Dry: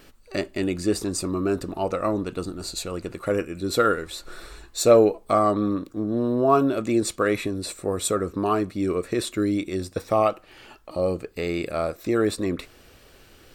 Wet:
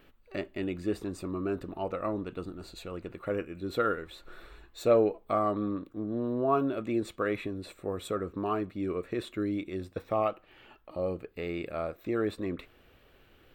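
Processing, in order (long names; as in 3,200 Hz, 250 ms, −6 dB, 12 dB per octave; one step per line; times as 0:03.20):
flat-topped bell 7,400 Hz −13.5 dB
level −8 dB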